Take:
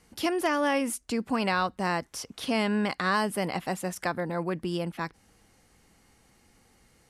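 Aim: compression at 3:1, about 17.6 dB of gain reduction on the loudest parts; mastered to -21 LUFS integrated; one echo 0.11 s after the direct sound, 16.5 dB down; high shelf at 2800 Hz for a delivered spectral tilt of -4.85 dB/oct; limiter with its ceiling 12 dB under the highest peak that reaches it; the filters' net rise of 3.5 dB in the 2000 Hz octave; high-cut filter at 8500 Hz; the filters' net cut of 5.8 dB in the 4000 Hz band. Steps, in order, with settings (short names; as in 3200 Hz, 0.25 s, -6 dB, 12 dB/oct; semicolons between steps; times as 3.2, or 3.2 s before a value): LPF 8500 Hz; bell 2000 Hz +8 dB; high shelf 2800 Hz -6 dB; bell 4000 Hz -7 dB; compressor 3:1, threshold -46 dBFS; limiter -39.5 dBFS; echo 0.11 s -16.5 dB; gain +28.5 dB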